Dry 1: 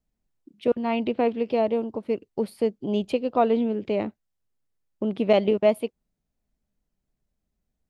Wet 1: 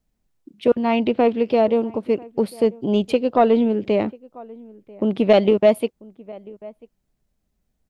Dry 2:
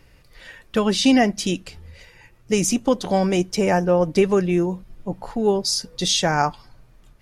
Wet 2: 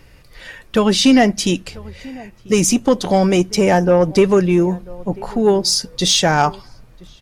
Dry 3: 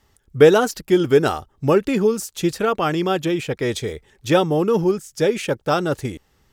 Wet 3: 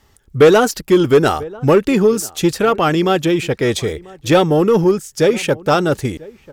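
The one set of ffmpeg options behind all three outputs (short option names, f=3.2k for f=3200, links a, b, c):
-filter_complex "[0:a]asplit=2[a][b];[b]adelay=991.3,volume=-23dB,highshelf=f=4k:g=-22.3[c];[a][c]amix=inputs=2:normalize=0,acontrast=88,volume=-1dB"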